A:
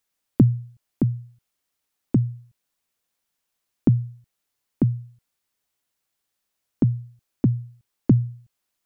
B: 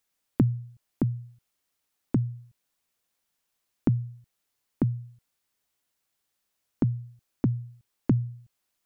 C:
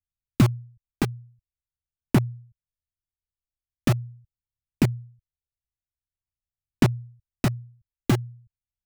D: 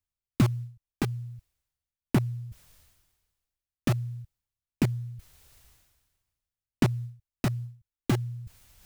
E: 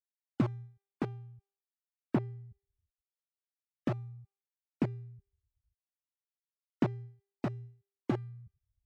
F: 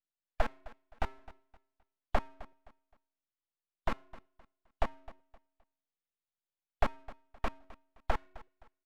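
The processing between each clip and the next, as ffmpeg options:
ffmpeg -i in.wav -af "acompressor=threshold=-30dB:ratio=1.5" out.wav
ffmpeg -i in.wav -filter_complex "[0:a]lowshelf=frequency=500:gain=3,acrossover=split=120[link_01][link_02];[link_02]acrusher=bits=3:mix=0:aa=0.000001[link_03];[link_01][link_03]amix=inputs=2:normalize=0,aphaser=in_gain=1:out_gain=1:delay=2.6:decay=0.32:speed=0.44:type=sinusoidal" out.wav
ffmpeg -i in.wav -af "areverse,acompressor=mode=upward:threshold=-22dB:ratio=2.5,areverse,acrusher=bits=9:mode=log:mix=0:aa=0.000001,volume=-4.5dB" out.wav
ffmpeg -i in.wav -af "afftfilt=real='re*gte(hypot(re,im),0.00708)':imag='im*gte(hypot(re,im),0.00708)':win_size=1024:overlap=0.75,bandpass=frequency=500:width_type=q:width=0.6:csg=0,bandreject=frequency=396.8:width_type=h:width=4,bandreject=frequency=793.6:width_type=h:width=4,bandreject=frequency=1190.4:width_type=h:width=4,bandreject=frequency=1587.2:width_type=h:width=4,bandreject=frequency=1984:width_type=h:width=4,bandreject=frequency=2380.8:width_type=h:width=4,bandreject=frequency=2777.6:width_type=h:width=4,bandreject=frequency=3174.4:width_type=h:width=4,bandreject=frequency=3571.2:width_type=h:width=4,bandreject=frequency=3968:width_type=h:width=4,bandreject=frequency=4364.8:width_type=h:width=4,bandreject=frequency=4761.6:width_type=h:width=4,bandreject=frequency=5158.4:width_type=h:width=4,bandreject=frequency=5555.2:width_type=h:width=4,bandreject=frequency=5952:width_type=h:width=4,bandreject=frequency=6348.8:width_type=h:width=4,bandreject=frequency=6745.6:width_type=h:width=4,bandreject=frequency=7142.4:width_type=h:width=4,bandreject=frequency=7539.2:width_type=h:width=4,bandreject=frequency=7936:width_type=h:width=4,bandreject=frequency=8332.8:width_type=h:width=4,bandreject=frequency=8729.6:width_type=h:width=4,bandreject=frequency=9126.4:width_type=h:width=4,bandreject=frequency=9523.2:width_type=h:width=4,bandreject=frequency=9920:width_type=h:width=4,bandreject=frequency=10316.8:width_type=h:width=4,bandreject=frequency=10713.6:width_type=h:width=4,bandreject=frequency=11110.4:width_type=h:width=4,bandreject=frequency=11507.2:width_type=h:width=4,bandreject=frequency=11904:width_type=h:width=4,bandreject=frequency=12300.8:width_type=h:width=4,bandreject=frequency=12697.6:width_type=h:width=4,bandreject=frequency=13094.4:width_type=h:width=4,volume=-2dB" out.wav
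ffmpeg -i in.wav -af "highpass=frequency=240:width_type=q:width=0.5412,highpass=frequency=240:width_type=q:width=1.307,lowpass=frequency=2500:width_type=q:width=0.5176,lowpass=frequency=2500:width_type=q:width=0.7071,lowpass=frequency=2500:width_type=q:width=1.932,afreqshift=65,aeval=exprs='abs(val(0))':channel_layout=same,aecho=1:1:260|520|780:0.112|0.0337|0.0101,volume=5dB" out.wav

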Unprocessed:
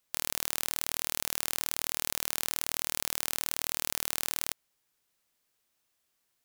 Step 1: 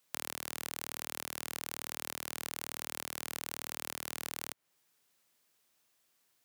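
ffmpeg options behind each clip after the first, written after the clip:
ffmpeg -i in.wav -filter_complex "[0:a]highpass=100,acrossover=split=390|2600[link_01][link_02][link_03];[link_01]acompressor=threshold=-54dB:ratio=4[link_04];[link_02]acompressor=threshold=-45dB:ratio=4[link_05];[link_03]acompressor=threshold=-40dB:ratio=4[link_06];[link_04][link_05][link_06]amix=inputs=3:normalize=0,volume=3dB" out.wav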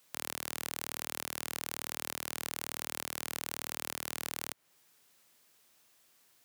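ffmpeg -i in.wav -af "alimiter=limit=-22.5dB:level=0:latency=1:release=27,volume=7.5dB" out.wav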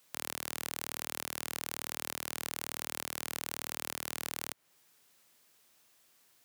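ffmpeg -i in.wav -af anull out.wav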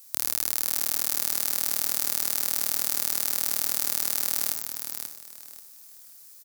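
ffmpeg -i in.wav -filter_complex "[0:a]asplit=2[link_01][link_02];[link_02]aecho=0:1:60|88|132:0.282|0.106|0.133[link_03];[link_01][link_03]amix=inputs=2:normalize=0,aexciter=amount=1.9:drive=9.6:freq=4300,asplit=2[link_04][link_05];[link_05]aecho=0:1:535|1070|1605:0.447|0.116|0.0302[link_06];[link_04][link_06]amix=inputs=2:normalize=0,volume=1.5dB" out.wav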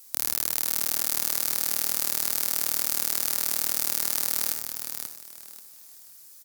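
ffmpeg -i in.wav -af "volume=1dB" -ar 48000 -c:a aac -b:a 128k out.aac

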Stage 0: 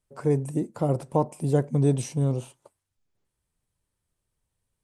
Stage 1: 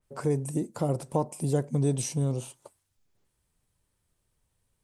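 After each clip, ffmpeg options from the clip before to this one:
ffmpeg -i in.wav -af "acompressor=threshold=-42dB:ratio=1.5,adynamicequalizer=threshold=0.00112:dfrequency=3500:dqfactor=0.7:tfrequency=3500:tqfactor=0.7:attack=5:release=100:ratio=0.375:range=3.5:mode=boostabove:tftype=highshelf,volume=4.5dB" out.wav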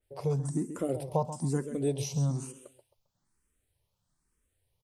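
ffmpeg -i in.wav -filter_complex "[0:a]asplit=2[link_01][link_02];[link_02]aecho=0:1:133|266|399:0.266|0.0798|0.0239[link_03];[link_01][link_03]amix=inputs=2:normalize=0,asplit=2[link_04][link_05];[link_05]afreqshift=1.1[link_06];[link_04][link_06]amix=inputs=2:normalize=1" out.wav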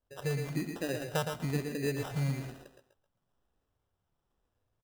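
ffmpeg -i in.wav -af "acrusher=samples=20:mix=1:aa=0.000001,aecho=1:1:115:0.473,volume=-3.5dB" out.wav

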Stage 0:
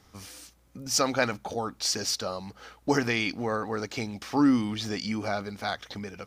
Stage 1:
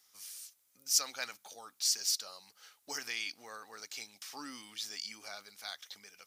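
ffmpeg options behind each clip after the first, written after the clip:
ffmpeg -i in.wav -af "aderivative" out.wav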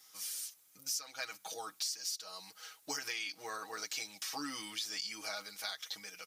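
ffmpeg -i in.wav -af "aecho=1:1:6.3:0.88,acompressor=threshold=-40dB:ratio=10,volume=4.5dB" out.wav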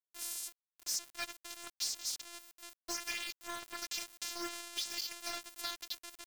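ffmpeg -i in.wav -af "afftfilt=real='hypot(re,im)*cos(PI*b)':imag='0':win_size=512:overlap=0.75,bandreject=frequency=55.38:width_type=h:width=4,bandreject=frequency=110.76:width_type=h:width=4,bandreject=frequency=166.14:width_type=h:width=4,bandreject=frequency=221.52:width_type=h:width=4,bandreject=frequency=276.9:width_type=h:width=4,bandreject=frequency=332.28:width_type=h:width=4,bandreject=frequency=387.66:width_type=h:width=4,aeval=exprs='val(0)*gte(abs(val(0)),0.00794)':channel_layout=same,volume=4.5dB" out.wav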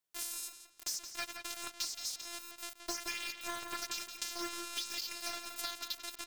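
ffmpeg -i in.wav -filter_complex "[0:a]acompressor=threshold=-42dB:ratio=6,asplit=2[link_01][link_02];[link_02]adelay=172,lowpass=frequency=4300:poles=1,volume=-6.5dB,asplit=2[link_03][link_04];[link_04]adelay=172,lowpass=frequency=4300:poles=1,volume=0.33,asplit=2[link_05][link_06];[link_06]adelay=172,lowpass=frequency=4300:poles=1,volume=0.33,asplit=2[link_07][link_08];[link_08]adelay=172,lowpass=frequency=4300:poles=1,volume=0.33[link_09];[link_03][link_05][link_07][link_09]amix=inputs=4:normalize=0[link_10];[link_01][link_10]amix=inputs=2:normalize=0,volume=7.5dB" out.wav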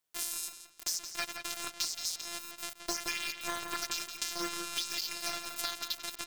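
ffmpeg -i in.wav -af "tremolo=f=160:d=0.462,volume=6dB" out.wav

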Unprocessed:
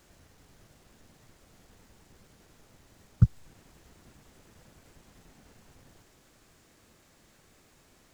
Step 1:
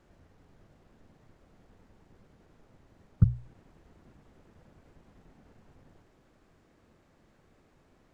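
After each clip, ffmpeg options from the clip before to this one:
ffmpeg -i in.wav -af "lowpass=frequency=1100:poles=1,bandreject=frequency=60:width_type=h:width=6,bandreject=frequency=120:width_type=h:width=6" out.wav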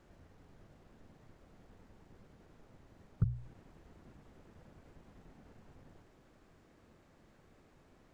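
ffmpeg -i in.wav -af "alimiter=limit=-20.5dB:level=0:latency=1:release=222" out.wav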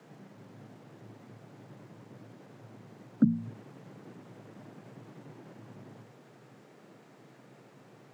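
ffmpeg -i in.wav -af "afreqshift=110,volume=8dB" out.wav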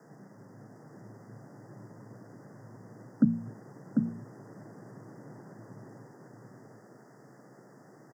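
ffmpeg -i in.wav -af "asuperstop=centerf=3100:order=20:qfactor=1.1,aecho=1:1:746:0.631" out.wav

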